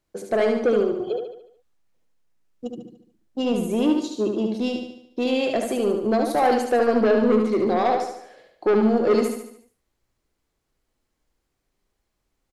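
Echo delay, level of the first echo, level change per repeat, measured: 73 ms, -5.0 dB, -6.0 dB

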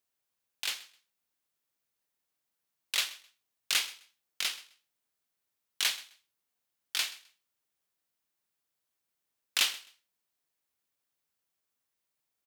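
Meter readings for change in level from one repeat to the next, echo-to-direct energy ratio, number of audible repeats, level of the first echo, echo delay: -14.0 dB, -19.5 dB, 2, -19.5 dB, 130 ms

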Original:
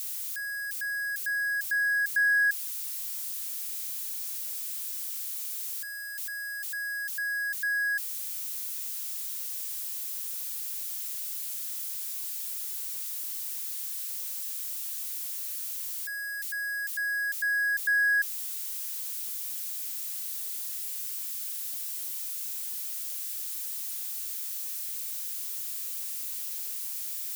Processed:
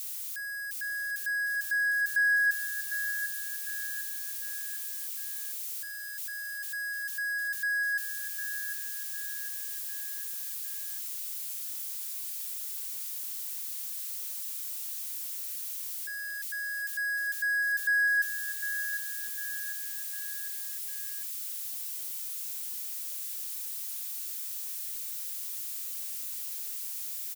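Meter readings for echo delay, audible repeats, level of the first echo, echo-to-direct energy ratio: 753 ms, 4, -9.5 dB, -8.5 dB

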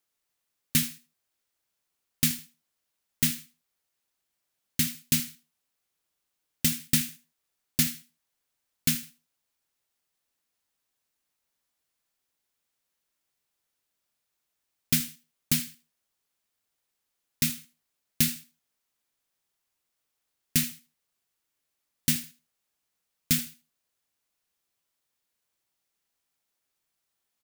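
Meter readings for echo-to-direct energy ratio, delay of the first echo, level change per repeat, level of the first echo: -16.0 dB, 78 ms, -14.0 dB, -16.0 dB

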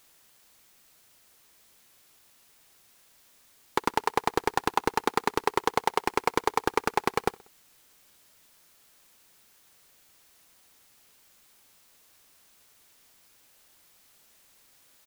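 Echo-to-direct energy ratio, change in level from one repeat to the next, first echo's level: -22.5 dB, -5.5 dB, -24.0 dB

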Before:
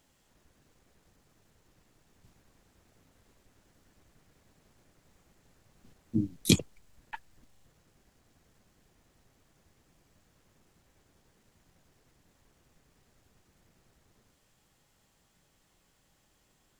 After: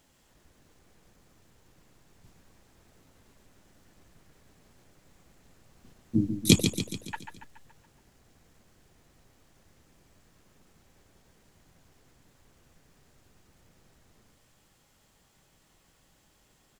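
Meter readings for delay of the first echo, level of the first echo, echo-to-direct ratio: 141 ms, -8.0 dB, -6.5 dB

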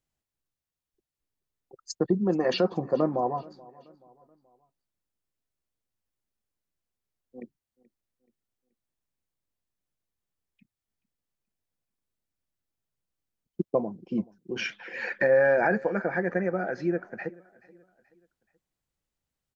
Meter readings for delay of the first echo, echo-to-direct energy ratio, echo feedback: 429 ms, -22.0 dB, 43%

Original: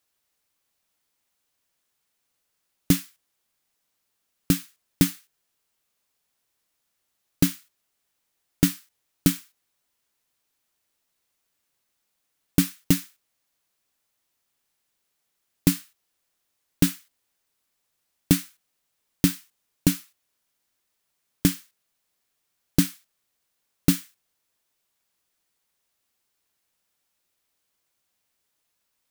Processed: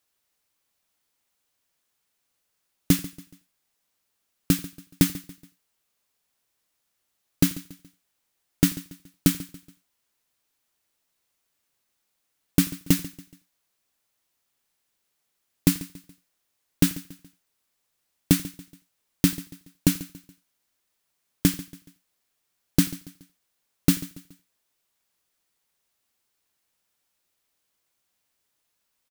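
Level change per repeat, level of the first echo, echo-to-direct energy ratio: no regular repeats, -23.5 dB, -16.5 dB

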